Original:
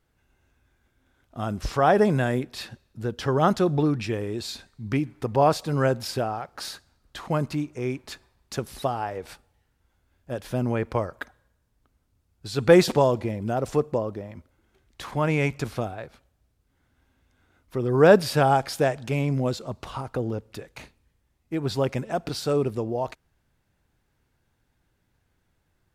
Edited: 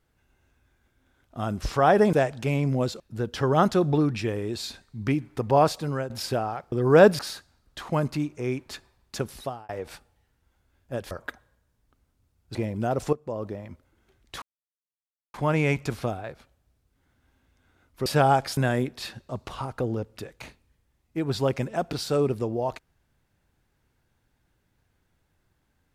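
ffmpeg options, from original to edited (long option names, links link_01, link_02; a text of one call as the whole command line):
ffmpeg -i in.wav -filter_complex "[0:a]asplit=14[link_01][link_02][link_03][link_04][link_05][link_06][link_07][link_08][link_09][link_10][link_11][link_12][link_13][link_14];[link_01]atrim=end=2.132[link_15];[link_02]atrim=start=18.778:end=19.652[link_16];[link_03]atrim=start=2.848:end=5.95,asetpts=PTS-STARTPTS,afade=type=out:start_time=2.732:duration=0.37:silence=0.188365[link_17];[link_04]atrim=start=5.95:end=6.572,asetpts=PTS-STARTPTS,afade=type=in:duration=0.004:curve=hsin:silence=0.188365[link_18];[link_05]atrim=start=17.798:end=18.272[link_19];[link_06]atrim=start=6.568:end=9.07,asetpts=PTS-STARTPTS,afade=type=out:start_time=2.082:duration=0.42[link_20];[link_07]atrim=start=9.07:end=10.492,asetpts=PTS-STARTPTS,afade=type=in:duration=0.004:curve=hsin[link_21];[link_08]atrim=start=11.038:end=12.482[link_22];[link_09]atrim=start=13.208:end=13.79,asetpts=PTS-STARTPTS,afade=type=out:start_time=0.578:duration=0.004:curve=hsin:silence=0.177828[link_23];[link_10]atrim=start=13.79:end=15.08,asetpts=PTS-STARTPTS,afade=type=in:duration=0.32:curve=qua:silence=0.177828,afade=type=out:start_time=1.286:duration=0.004:curve=hsin,apad=pad_dur=0.92[link_24];[link_11]atrim=start=15.08:end=17.802,asetpts=PTS-STARTPTS,afade=type=in:duration=0.004:curve=hsin[link_25];[link_12]atrim=start=18.268:end=18.782[link_26];[link_13]atrim=start=2.128:end=2.852[link_27];[link_14]atrim=start=19.648[link_28];[link_15][link_16]acrossfade=duration=0.004:curve1=hsin:curve2=hsin[link_29];[link_17][link_18]concat=n=2:v=0:a=1[link_30];[link_29][link_30]acrossfade=duration=0.004:curve1=hsin:curve2=hsin[link_31];[link_31][link_19]acrossfade=duration=0.004:curve1=hsin:curve2=hsin[link_32];[link_20][link_21]concat=n=2:v=0:a=1[link_33];[link_32][link_33]acrossfade=duration=0.004:curve1=hsin:curve2=hsin[link_34];[link_34][link_22]acrossfade=duration=0.004:curve1=hsin:curve2=hsin[link_35];[link_23][link_24][link_25]concat=n=3:v=0:a=1[link_36];[link_35][link_36]acrossfade=duration=0.004:curve1=hsin:curve2=hsin[link_37];[link_37][link_26]acrossfade=duration=0.004:curve1=hsin:curve2=hsin[link_38];[link_38][link_27]acrossfade=duration=0.004:curve1=hsin:curve2=hsin[link_39];[link_39][link_28]acrossfade=duration=0.004:curve1=hsin:curve2=hsin" out.wav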